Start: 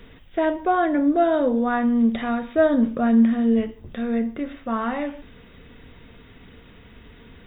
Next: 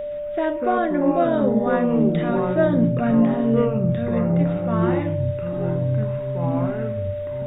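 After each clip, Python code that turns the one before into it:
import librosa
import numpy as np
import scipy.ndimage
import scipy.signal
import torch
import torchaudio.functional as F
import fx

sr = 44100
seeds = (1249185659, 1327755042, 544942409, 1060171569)

y = fx.echo_pitch(x, sr, ms=119, semitones=-5, count=3, db_per_echo=-3.0)
y = y + 10.0 ** (-24.0 / 20.0) * np.sin(2.0 * np.pi * 590.0 * np.arange(len(y)) / sr)
y = F.gain(torch.from_numpy(y), -2.0).numpy()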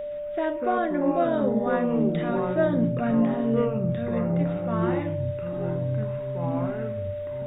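y = fx.low_shelf(x, sr, hz=230.0, db=-3.0)
y = F.gain(torch.from_numpy(y), -3.5).numpy()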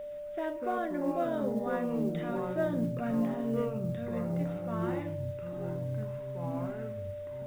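y = fx.mod_noise(x, sr, seeds[0], snr_db=33)
y = F.gain(torch.from_numpy(y), -8.0).numpy()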